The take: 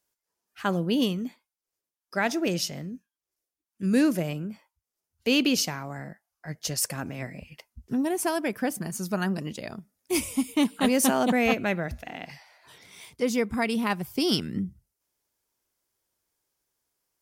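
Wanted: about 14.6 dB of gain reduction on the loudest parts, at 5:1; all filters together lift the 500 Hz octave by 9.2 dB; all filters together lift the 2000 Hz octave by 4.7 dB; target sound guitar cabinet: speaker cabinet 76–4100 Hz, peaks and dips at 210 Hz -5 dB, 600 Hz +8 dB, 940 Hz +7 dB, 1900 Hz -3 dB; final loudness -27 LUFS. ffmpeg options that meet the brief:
-af "equalizer=f=500:t=o:g=6,equalizer=f=2k:t=o:g=7,acompressor=threshold=-32dB:ratio=5,highpass=76,equalizer=f=210:t=q:w=4:g=-5,equalizer=f=600:t=q:w=4:g=8,equalizer=f=940:t=q:w=4:g=7,equalizer=f=1.9k:t=q:w=4:g=-3,lowpass=f=4.1k:w=0.5412,lowpass=f=4.1k:w=1.3066,volume=8dB"

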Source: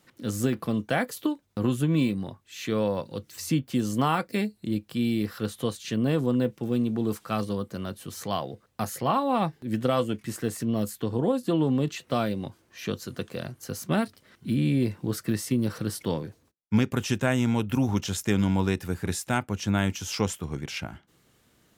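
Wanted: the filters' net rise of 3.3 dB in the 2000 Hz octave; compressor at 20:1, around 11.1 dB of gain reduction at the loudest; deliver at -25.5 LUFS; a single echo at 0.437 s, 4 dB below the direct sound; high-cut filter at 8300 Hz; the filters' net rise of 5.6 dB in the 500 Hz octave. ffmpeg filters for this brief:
-af "lowpass=8.3k,equalizer=f=500:t=o:g=6.5,equalizer=f=2k:t=o:g=4,acompressor=threshold=-26dB:ratio=20,aecho=1:1:437:0.631,volume=6.5dB"

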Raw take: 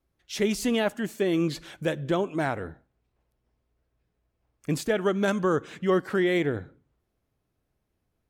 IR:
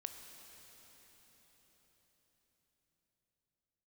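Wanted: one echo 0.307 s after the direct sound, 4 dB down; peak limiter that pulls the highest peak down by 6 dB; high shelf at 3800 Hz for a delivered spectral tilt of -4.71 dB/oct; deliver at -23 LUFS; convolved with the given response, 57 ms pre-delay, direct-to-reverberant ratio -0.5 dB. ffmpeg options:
-filter_complex "[0:a]highshelf=f=3.8k:g=5,alimiter=limit=-18.5dB:level=0:latency=1,aecho=1:1:307:0.631,asplit=2[a][b];[1:a]atrim=start_sample=2205,adelay=57[c];[b][c]afir=irnorm=-1:irlink=0,volume=3.5dB[d];[a][d]amix=inputs=2:normalize=0,volume=2.5dB"

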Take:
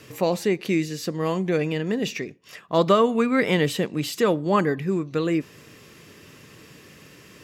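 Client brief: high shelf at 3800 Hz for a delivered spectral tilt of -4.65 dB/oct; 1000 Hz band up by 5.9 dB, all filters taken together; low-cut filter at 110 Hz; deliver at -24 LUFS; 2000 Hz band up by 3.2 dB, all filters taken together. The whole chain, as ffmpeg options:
-af "highpass=110,equalizer=f=1k:t=o:g=6.5,equalizer=f=2k:t=o:g=3.5,highshelf=f=3.8k:g=-6,volume=-2.5dB"

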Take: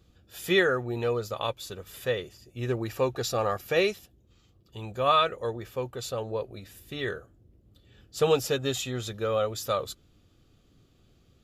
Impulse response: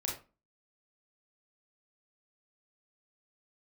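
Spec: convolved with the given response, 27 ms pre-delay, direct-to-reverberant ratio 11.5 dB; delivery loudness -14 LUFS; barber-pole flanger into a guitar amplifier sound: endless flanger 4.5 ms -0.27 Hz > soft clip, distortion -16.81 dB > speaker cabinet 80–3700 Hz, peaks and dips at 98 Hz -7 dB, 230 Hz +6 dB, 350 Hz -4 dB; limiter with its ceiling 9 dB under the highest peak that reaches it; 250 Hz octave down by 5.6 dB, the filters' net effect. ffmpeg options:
-filter_complex "[0:a]equalizer=f=250:t=o:g=-8.5,alimiter=limit=-20dB:level=0:latency=1,asplit=2[a][b];[1:a]atrim=start_sample=2205,adelay=27[c];[b][c]afir=irnorm=-1:irlink=0,volume=-14dB[d];[a][d]amix=inputs=2:normalize=0,asplit=2[e][f];[f]adelay=4.5,afreqshift=-0.27[g];[e][g]amix=inputs=2:normalize=1,asoftclip=threshold=-27dB,highpass=80,equalizer=f=98:t=q:w=4:g=-7,equalizer=f=230:t=q:w=4:g=6,equalizer=f=350:t=q:w=4:g=-4,lowpass=f=3.7k:w=0.5412,lowpass=f=3.7k:w=1.3066,volume=24.5dB"

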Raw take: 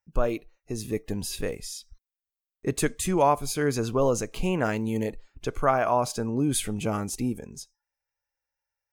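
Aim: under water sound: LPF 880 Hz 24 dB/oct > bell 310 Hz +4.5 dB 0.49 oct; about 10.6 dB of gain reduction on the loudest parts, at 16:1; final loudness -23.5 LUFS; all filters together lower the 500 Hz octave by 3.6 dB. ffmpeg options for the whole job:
-af "equalizer=f=500:t=o:g=-5.5,acompressor=threshold=-27dB:ratio=16,lowpass=f=880:w=0.5412,lowpass=f=880:w=1.3066,equalizer=f=310:t=o:w=0.49:g=4.5,volume=11dB"

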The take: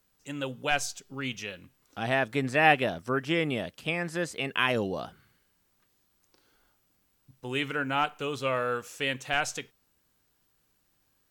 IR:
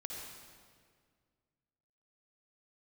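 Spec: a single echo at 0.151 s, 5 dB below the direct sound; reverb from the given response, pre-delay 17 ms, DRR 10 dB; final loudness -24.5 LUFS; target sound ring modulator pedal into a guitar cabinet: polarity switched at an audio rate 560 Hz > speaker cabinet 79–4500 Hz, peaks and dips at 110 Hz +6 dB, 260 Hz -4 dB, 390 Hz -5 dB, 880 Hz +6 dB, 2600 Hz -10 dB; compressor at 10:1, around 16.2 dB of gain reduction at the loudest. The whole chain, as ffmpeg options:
-filter_complex "[0:a]acompressor=threshold=-32dB:ratio=10,aecho=1:1:151:0.562,asplit=2[a][b];[1:a]atrim=start_sample=2205,adelay=17[c];[b][c]afir=irnorm=-1:irlink=0,volume=-9dB[d];[a][d]amix=inputs=2:normalize=0,aeval=exprs='val(0)*sgn(sin(2*PI*560*n/s))':c=same,highpass=79,equalizer=f=110:t=q:w=4:g=6,equalizer=f=260:t=q:w=4:g=-4,equalizer=f=390:t=q:w=4:g=-5,equalizer=f=880:t=q:w=4:g=6,equalizer=f=2.6k:t=q:w=4:g=-10,lowpass=f=4.5k:w=0.5412,lowpass=f=4.5k:w=1.3066,volume=12dB"

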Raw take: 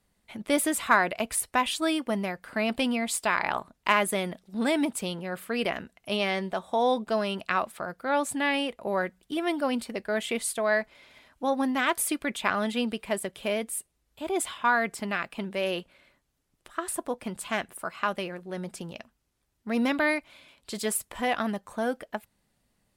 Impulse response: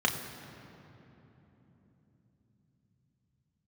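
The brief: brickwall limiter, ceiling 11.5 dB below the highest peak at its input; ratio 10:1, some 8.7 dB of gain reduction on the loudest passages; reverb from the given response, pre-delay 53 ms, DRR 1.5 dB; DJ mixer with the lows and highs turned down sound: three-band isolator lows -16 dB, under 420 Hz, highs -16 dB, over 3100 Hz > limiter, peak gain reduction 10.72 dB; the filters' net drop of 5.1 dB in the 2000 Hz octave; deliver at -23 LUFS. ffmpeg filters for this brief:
-filter_complex "[0:a]equalizer=f=2k:t=o:g=-5.5,acompressor=threshold=-27dB:ratio=10,alimiter=level_in=1dB:limit=-24dB:level=0:latency=1,volume=-1dB,asplit=2[a][b];[1:a]atrim=start_sample=2205,adelay=53[c];[b][c]afir=irnorm=-1:irlink=0,volume=-12.5dB[d];[a][d]amix=inputs=2:normalize=0,acrossover=split=420 3100:gain=0.158 1 0.158[e][f][g];[e][f][g]amix=inputs=3:normalize=0,volume=19dB,alimiter=limit=-13dB:level=0:latency=1"

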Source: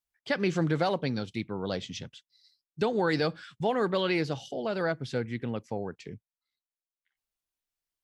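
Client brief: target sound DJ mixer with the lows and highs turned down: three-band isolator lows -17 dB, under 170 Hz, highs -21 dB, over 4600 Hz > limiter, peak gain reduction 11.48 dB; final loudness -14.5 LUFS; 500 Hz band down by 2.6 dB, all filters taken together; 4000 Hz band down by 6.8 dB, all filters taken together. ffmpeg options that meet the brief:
-filter_complex "[0:a]acrossover=split=170 4600:gain=0.141 1 0.0891[a][b][c];[a][b][c]amix=inputs=3:normalize=0,equalizer=f=500:t=o:g=-3,equalizer=f=4k:t=o:g=-5.5,volume=24.5dB,alimiter=limit=-3.5dB:level=0:latency=1"

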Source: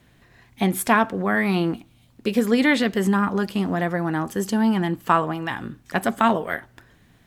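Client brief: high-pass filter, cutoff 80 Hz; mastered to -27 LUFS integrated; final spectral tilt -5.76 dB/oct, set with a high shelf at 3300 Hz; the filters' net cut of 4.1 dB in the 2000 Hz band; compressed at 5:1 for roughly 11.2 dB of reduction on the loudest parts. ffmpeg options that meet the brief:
-af "highpass=80,equalizer=f=2k:t=o:g=-3.5,highshelf=f=3.3k:g=-6,acompressor=threshold=-27dB:ratio=5,volume=4.5dB"

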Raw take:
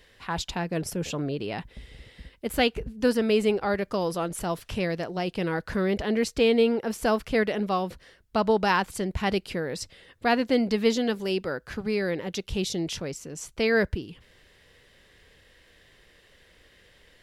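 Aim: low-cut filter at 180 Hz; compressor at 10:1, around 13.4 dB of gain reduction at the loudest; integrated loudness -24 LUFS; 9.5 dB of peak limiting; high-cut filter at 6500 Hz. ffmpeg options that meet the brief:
-af "highpass=180,lowpass=6.5k,acompressor=threshold=-31dB:ratio=10,volume=14dB,alimiter=limit=-12.5dB:level=0:latency=1"

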